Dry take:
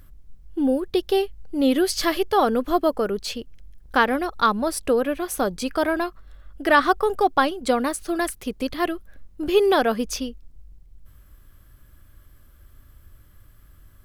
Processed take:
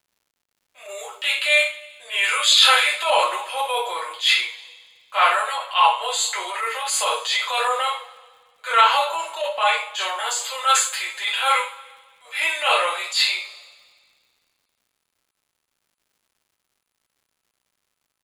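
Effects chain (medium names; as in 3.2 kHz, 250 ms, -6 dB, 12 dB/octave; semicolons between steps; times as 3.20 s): Savitzky-Golay filter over 15 samples; comb 6.4 ms, depth 52%; tape speed -23%; level rider gain up to 9.5 dB; differentiator; gate -56 dBFS, range -38 dB; steep high-pass 500 Hz 48 dB/octave; two-slope reverb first 0.34 s, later 1.9 s, from -26 dB, DRR -8 dB; crackle 170 per s -60 dBFS; transient shaper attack -7 dB, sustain +3 dB; trim +8.5 dB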